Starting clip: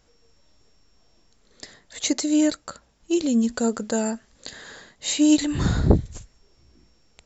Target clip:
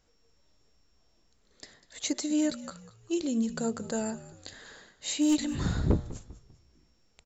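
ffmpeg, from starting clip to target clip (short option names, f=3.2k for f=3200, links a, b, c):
-filter_complex "[0:a]bandreject=f=118.5:t=h:w=4,bandreject=f=237:t=h:w=4,bandreject=f=355.5:t=h:w=4,bandreject=f=474:t=h:w=4,bandreject=f=592.5:t=h:w=4,bandreject=f=711:t=h:w=4,bandreject=f=829.5:t=h:w=4,bandreject=f=948:t=h:w=4,bandreject=f=1.0665k:t=h:w=4,bandreject=f=1.185k:t=h:w=4,aeval=exprs='clip(val(0),-1,0.251)':c=same,asplit=4[a][b][c][d];[b]adelay=197,afreqshift=-63,volume=-16.5dB[e];[c]adelay=394,afreqshift=-126,volume=-24.7dB[f];[d]adelay=591,afreqshift=-189,volume=-32.9dB[g];[a][e][f][g]amix=inputs=4:normalize=0,volume=-7.5dB"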